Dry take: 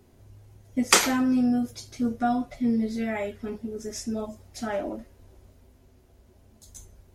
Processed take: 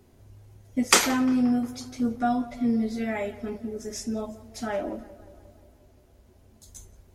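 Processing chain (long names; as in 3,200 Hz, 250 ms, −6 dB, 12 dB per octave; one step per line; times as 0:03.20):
tape delay 176 ms, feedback 68%, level −16.5 dB, low-pass 2,300 Hz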